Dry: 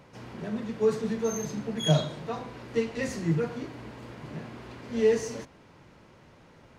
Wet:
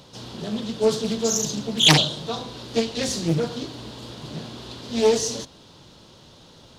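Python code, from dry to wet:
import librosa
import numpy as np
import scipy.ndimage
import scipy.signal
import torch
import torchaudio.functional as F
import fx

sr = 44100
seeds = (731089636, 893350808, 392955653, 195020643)

y = fx.high_shelf_res(x, sr, hz=2800.0, db=8.5, q=3.0)
y = fx.doppler_dist(y, sr, depth_ms=0.78)
y = F.gain(torch.from_numpy(y), 4.5).numpy()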